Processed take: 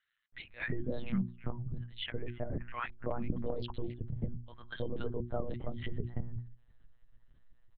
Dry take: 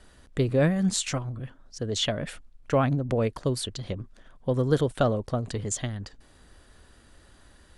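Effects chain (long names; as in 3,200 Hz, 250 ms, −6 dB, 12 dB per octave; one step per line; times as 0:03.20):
spectral dynamics exaggerated over time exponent 1.5
low-shelf EQ 360 Hz +8 dB
multiband delay without the direct sound highs, lows 330 ms, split 1,400 Hz
downward compressor 3 to 1, threshold −29 dBFS, peak gain reduction 12 dB
0:01.94–0:02.74: low-pass filter 2,700 Hz 24 dB per octave
brickwall limiter −24.5 dBFS, peak gain reduction 6.5 dB
one-pitch LPC vocoder at 8 kHz 120 Hz
mains-hum notches 60/120/180/240/300/360 Hz
0:03.48–0:03.94: highs frequency-modulated by the lows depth 0.37 ms
level +1 dB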